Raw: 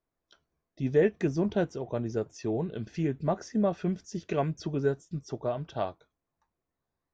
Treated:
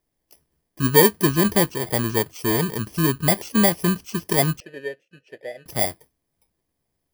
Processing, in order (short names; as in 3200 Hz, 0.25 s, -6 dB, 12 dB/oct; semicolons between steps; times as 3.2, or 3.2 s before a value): FFT order left unsorted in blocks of 32 samples; 4.6–5.66 vowel filter e; gain +9 dB